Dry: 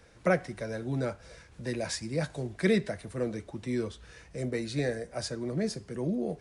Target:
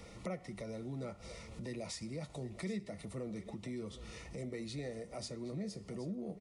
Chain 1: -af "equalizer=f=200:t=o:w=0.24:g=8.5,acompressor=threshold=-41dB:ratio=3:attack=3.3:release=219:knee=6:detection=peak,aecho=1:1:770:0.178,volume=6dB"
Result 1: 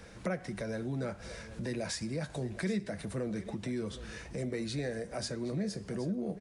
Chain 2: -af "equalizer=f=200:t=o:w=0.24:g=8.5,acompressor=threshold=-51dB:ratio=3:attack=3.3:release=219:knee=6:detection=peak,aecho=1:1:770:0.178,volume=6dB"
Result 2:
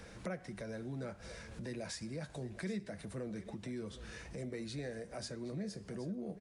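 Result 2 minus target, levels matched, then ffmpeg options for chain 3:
2000 Hz band +3.0 dB
-af "asuperstop=centerf=1600:order=12:qfactor=5.1,equalizer=f=200:t=o:w=0.24:g=8.5,acompressor=threshold=-51dB:ratio=3:attack=3.3:release=219:knee=6:detection=peak,aecho=1:1:770:0.178,volume=6dB"

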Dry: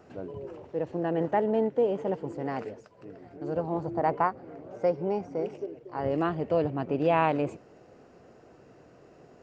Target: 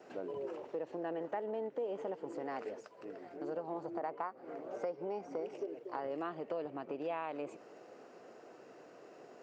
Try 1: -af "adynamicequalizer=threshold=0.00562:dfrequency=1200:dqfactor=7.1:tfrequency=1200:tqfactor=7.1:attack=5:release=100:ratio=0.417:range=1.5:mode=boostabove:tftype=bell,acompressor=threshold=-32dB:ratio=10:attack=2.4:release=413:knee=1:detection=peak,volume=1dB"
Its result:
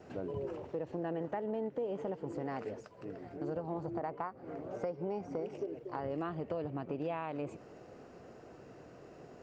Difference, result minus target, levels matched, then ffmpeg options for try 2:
250 Hz band +2.5 dB
-af "adynamicequalizer=threshold=0.00562:dfrequency=1200:dqfactor=7.1:tfrequency=1200:tqfactor=7.1:attack=5:release=100:ratio=0.417:range=1.5:mode=boostabove:tftype=bell,acompressor=threshold=-32dB:ratio=10:attack=2.4:release=413:knee=1:detection=peak,highpass=330,volume=1dB"

